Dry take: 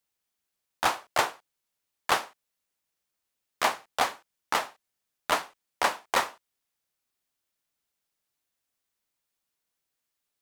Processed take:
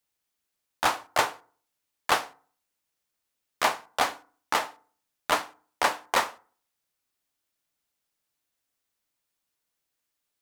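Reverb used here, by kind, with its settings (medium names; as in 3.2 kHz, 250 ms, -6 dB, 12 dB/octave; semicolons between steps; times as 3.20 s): FDN reverb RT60 0.47 s, low-frequency decay 1.1×, high-frequency decay 0.55×, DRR 15 dB; trim +1 dB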